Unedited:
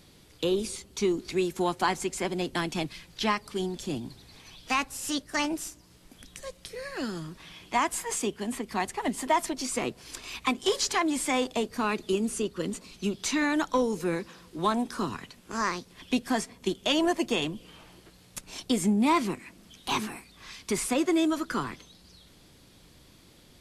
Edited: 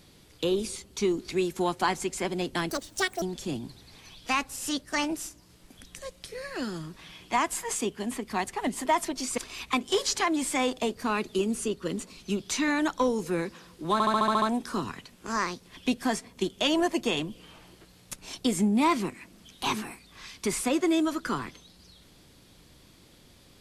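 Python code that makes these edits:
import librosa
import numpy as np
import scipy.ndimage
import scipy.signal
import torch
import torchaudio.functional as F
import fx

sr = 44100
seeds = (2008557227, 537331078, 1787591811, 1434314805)

y = fx.edit(x, sr, fx.speed_span(start_s=2.7, length_s=0.93, speed=1.79),
    fx.cut(start_s=9.79, length_s=0.33),
    fx.stutter(start_s=14.67, slice_s=0.07, count=8), tone=tone)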